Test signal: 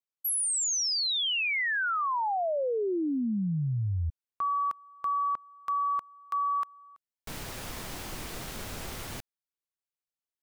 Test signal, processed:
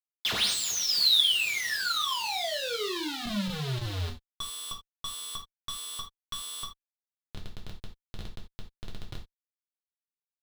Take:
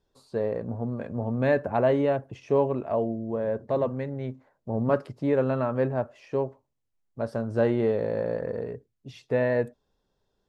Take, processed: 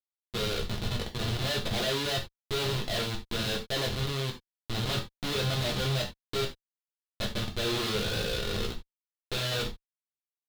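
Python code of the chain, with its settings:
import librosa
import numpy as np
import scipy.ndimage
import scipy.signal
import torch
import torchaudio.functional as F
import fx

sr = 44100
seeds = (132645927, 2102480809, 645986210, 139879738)

y = fx.delta_mod(x, sr, bps=64000, step_db=-29.0)
y = fx.hum_notches(y, sr, base_hz=60, count=4)
y = fx.schmitt(y, sr, flips_db=-28.0)
y = fx.peak_eq(y, sr, hz=3800.0, db=14.5, octaves=0.83)
y = fx.rev_gated(y, sr, seeds[0], gate_ms=110, shape='falling', drr_db=-1.0)
y = y * 10.0 ** (-7.0 / 20.0)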